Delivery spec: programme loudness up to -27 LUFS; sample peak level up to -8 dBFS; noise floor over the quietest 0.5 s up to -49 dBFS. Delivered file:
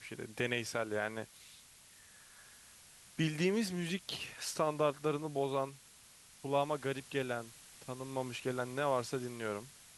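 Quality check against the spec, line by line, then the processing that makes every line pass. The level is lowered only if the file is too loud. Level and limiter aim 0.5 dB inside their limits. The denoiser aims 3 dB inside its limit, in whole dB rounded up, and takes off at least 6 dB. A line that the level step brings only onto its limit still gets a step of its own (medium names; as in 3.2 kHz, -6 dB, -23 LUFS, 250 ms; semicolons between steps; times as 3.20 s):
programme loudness -37.0 LUFS: pass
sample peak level -18.5 dBFS: pass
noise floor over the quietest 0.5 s -60 dBFS: pass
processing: none needed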